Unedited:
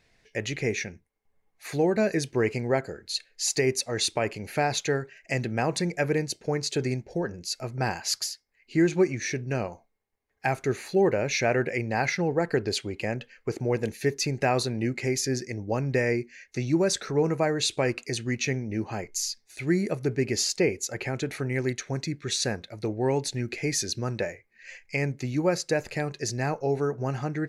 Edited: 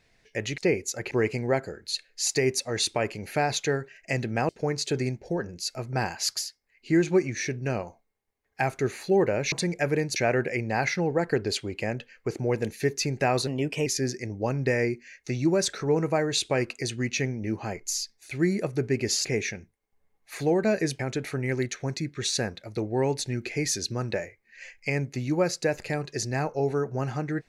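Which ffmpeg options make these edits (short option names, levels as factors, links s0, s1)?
-filter_complex "[0:a]asplit=10[s0][s1][s2][s3][s4][s5][s6][s7][s8][s9];[s0]atrim=end=0.582[s10];[s1]atrim=start=20.528:end=21.062[s11];[s2]atrim=start=2.318:end=5.702[s12];[s3]atrim=start=6.338:end=11.372[s13];[s4]atrim=start=5.698:end=6.342[s14];[s5]atrim=start=11.368:end=14.684[s15];[s6]atrim=start=14.68:end=15.14,asetpts=PTS-STARTPTS,asetrate=51597,aresample=44100,atrim=end_sample=17338,asetpts=PTS-STARTPTS[s16];[s7]atrim=start=15.136:end=20.532[s17];[s8]atrim=start=0.578:end=2.322[s18];[s9]atrim=start=21.058[s19];[s10][s11]acrossfade=d=0.004:c1=hsin:c2=hsin[s20];[s20][s12]acrossfade=d=0.004:c1=hsin:c2=hsin[s21];[s21][s13]acrossfade=d=0.004:c1=hsin:c2=hsin[s22];[s22][s14]acrossfade=d=0.004:c1=hsin:c2=hsin[s23];[s23][s15]acrossfade=d=0.004:c1=hsin:c2=hsin[s24];[s24][s16]acrossfade=d=0.004:c1=hsin:c2=hsin[s25];[s25][s17]acrossfade=d=0.004:c1=hsin:c2=hsin[s26];[s26][s18]acrossfade=d=0.004:c1=hsin:c2=hsin[s27];[s27][s19]acrossfade=d=0.004:c1=hsin:c2=hsin"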